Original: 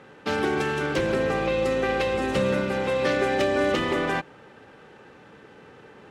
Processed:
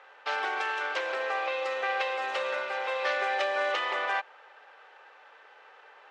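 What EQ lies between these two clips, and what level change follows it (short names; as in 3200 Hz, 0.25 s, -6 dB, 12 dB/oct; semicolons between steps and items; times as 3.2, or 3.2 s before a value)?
HPF 650 Hz 24 dB/oct; air absorption 120 m; 0.0 dB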